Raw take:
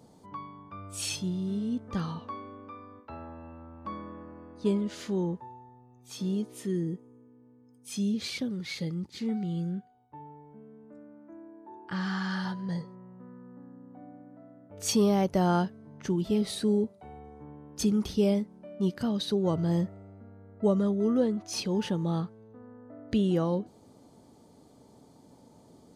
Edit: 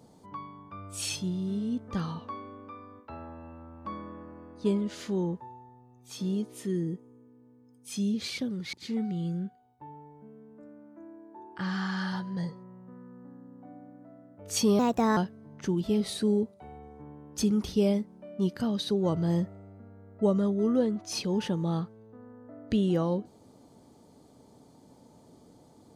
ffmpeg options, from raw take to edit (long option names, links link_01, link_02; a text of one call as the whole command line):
ffmpeg -i in.wav -filter_complex "[0:a]asplit=4[link_01][link_02][link_03][link_04];[link_01]atrim=end=8.732[link_05];[link_02]atrim=start=9.048:end=15.114[link_06];[link_03]atrim=start=15.11:end=15.58,asetpts=PTS-STARTPTS,asetrate=54684,aresample=44100,atrim=end_sample=16715,asetpts=PTS-STARTPTS[link_07];[link_04]atrim=start=15.576[link_08];[link_05][link_06]acrossfade=duration=0.004:curve1=hsin:curve2=hsin[link_09];[link_09][link_07]acrossfade=duration=0.004:curve1=hsin:curve2=hsin[link_10];[link_10][link_08]acrossfade=duration=0.004:curve1=hsin:curve2=hsin" out.wav